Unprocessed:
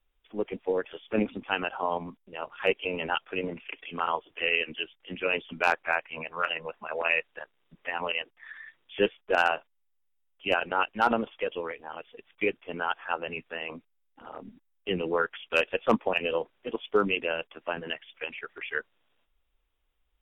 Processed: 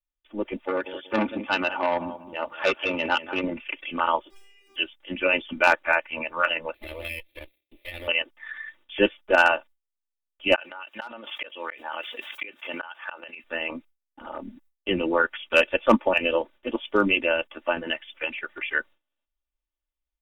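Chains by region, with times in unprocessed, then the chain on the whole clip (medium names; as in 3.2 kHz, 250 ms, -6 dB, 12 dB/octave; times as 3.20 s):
0.66–3.43 s: high-pass 61 Hz + feedback delay 187 ms, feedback 25%, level -14 dB + transformer saturation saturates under 1.4 kHz
4.30–4.76 s: jump at every zero crossing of -34 dBFS + compression 16:1, threshold -38 dBFS + inharmonic resonator 390 Hz, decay 0.72 s, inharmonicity 0.002
6.74–8.08 s: comb filter that takes the minimum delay 0.52 ms + FFT filter 100 Hz 0 dB, 190 Hz -18 dB, 310 Hz +4 dB, 600 Hz +2 dB, 1 kHz -5 dB, 1.5 kHz -15 dB, 2.6 kHz +10 dB, 4 kHz 0 dB, 6 kHz -24 dB, 11 kHz +11 dB + compression 3:1, threshold -41 dBFS
10.55–13.44 s: high-pass 1.4 kHz 6 dB/octave + inverted gate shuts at -28 dBFS, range -36 dB + level flattener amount 70%
whole clip: gate with hold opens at -60 dBFS; comb 3.4 ms, depth 68%; level rider gain up to 4.5 dB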